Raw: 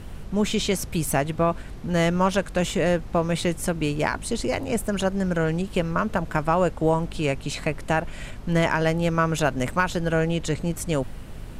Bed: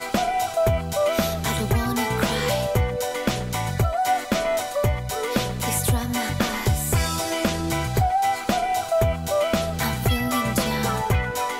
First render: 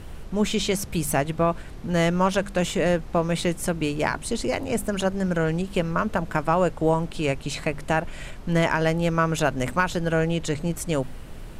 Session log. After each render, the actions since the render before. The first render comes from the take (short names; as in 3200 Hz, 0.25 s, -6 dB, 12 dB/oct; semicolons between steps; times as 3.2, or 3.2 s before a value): de-hum 50 Hz, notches 5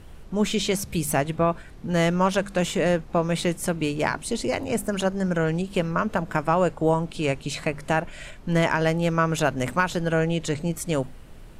noise print and reduce 6 dB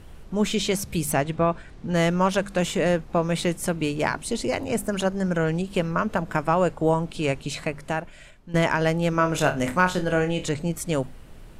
1.12–1.95 LPF 8100 Hz; 7.41–8.54 fade out, to -14.5 dB; 9.1–10.49 flutter echo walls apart 4.7 m, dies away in 0.23 s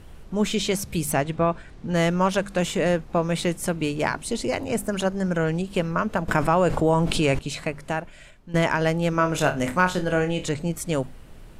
6.28–7.39 fast leveller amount 70%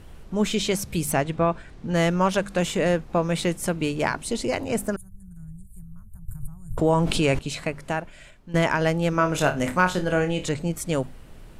4.96–6.78 inverse Chebyshev band-stop 230–5800 Hz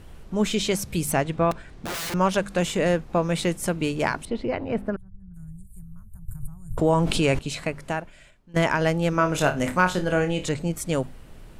1.51–2.14 wrapped overs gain 26 dB; 4.25–5.34 air absorption 390 m; 7.84–8.56 fade out, to -12 dB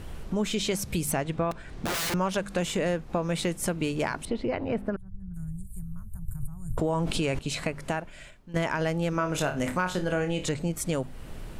in parallel at -2 dB: limiter -15 dBFS, peak gain reduction 8.5 dB; on the sum: compressor 2.5:1, threshold -29 dBFS, peak gain reduction 11.5 dB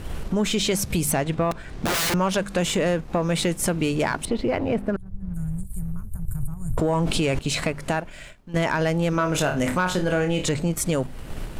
sample leveller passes 1; in parallel at -1.5 dB: level quantiser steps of 17 dB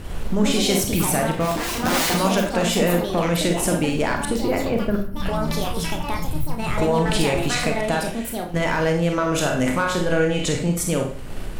Schroeder reverb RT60 0.45 s, combs from 31 ms, DRR 2.5 dB; echoes that change speed 0.18 s, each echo +5 st, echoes 2, each echo -6 dB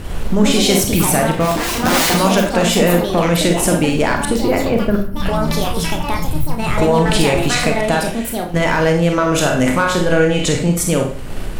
gain +6 dB; limiter -2 dBFS, peak gain reduction 1 dB